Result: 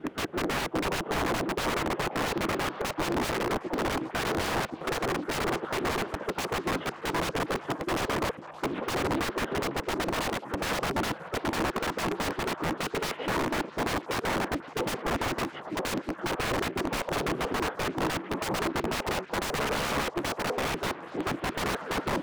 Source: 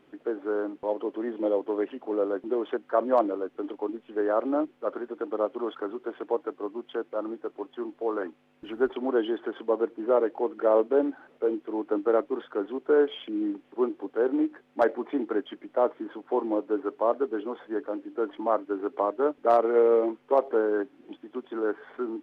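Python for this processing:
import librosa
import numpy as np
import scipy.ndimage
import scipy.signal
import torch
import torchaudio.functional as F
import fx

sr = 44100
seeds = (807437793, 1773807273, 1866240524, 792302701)

p1 = fx.block_reorder(x, sr, ms=83.0, group=2)
p2 = fx.rider(p1, sr, range_db=4, speed_s=0.5)
p3 = fx.pitch_keep_formants(p2, sr, semitones=-8.5)
p4 = fx.low_shelf(p3, sr, hz=77.0, db=-4.0)
p5 = (np.mod(10.0 ** (29.5 / 20.0) * p4 + 1.0, 2.0) - 1.0) / 10.0 ** (29.5 / 20.0)
p6 = fx.high_shelf(p5, sr, hz=2200.0, db=-10.5)
p7 = p6 + fx.echo_stepped(p6, sr, ms=538, hz=780.0, octaves=0.7, feedback_pct=70, wet_db=-11.0, dry=0)
p8 = fx.doppler_dist(p7, sr, depth_ms=0.5)
y = p8 * librosa.db_to_amplitude(9.0)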